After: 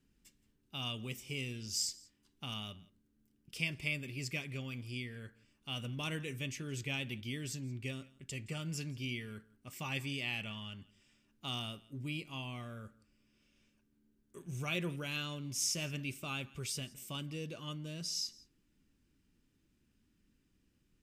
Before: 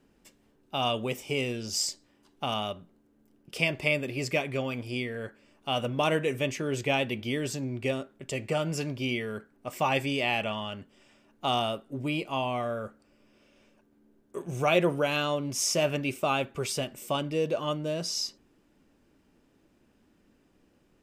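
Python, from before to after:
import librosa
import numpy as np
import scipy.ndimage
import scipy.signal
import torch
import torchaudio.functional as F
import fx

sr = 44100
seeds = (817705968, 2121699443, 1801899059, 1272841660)

y = fx.tone_stack(x, sr, knobs='6-0-2')
y = y + 10.0 ** (-22.5 / 20.0) * np.pad(y, (int(170 * sr / 1000.0), 0))[:len(y)]
y = y * librosa.db_to_amplitude(9.0)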